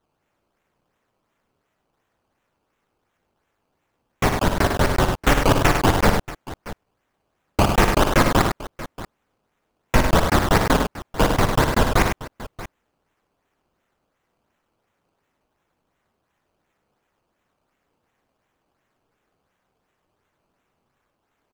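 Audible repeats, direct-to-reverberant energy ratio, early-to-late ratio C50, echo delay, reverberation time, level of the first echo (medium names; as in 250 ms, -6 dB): 3, no reverb, no reverb, 58 ms, no reverb, -8.5 dB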